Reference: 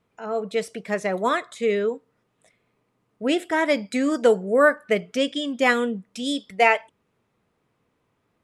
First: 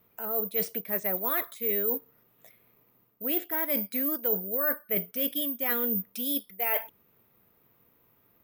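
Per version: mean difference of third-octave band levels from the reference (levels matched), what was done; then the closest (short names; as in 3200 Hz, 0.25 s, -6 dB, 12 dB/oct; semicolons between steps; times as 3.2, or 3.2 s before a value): 7.5 dB: reverse; compressor 6:1, threshold -33 dBFS, peak gain reduction 19.5 dB; reverse; careless resampling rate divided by 3×, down filtered, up zero stuff; gain +1.5 dB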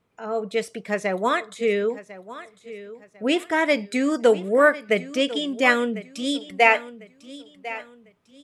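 2.0 dB: dynamic EQ 2500 Hz, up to +4 dB, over -36 dBFS, Q 2.1; on a send: feedback echo 1.049 s, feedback 32%, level -16 dB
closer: second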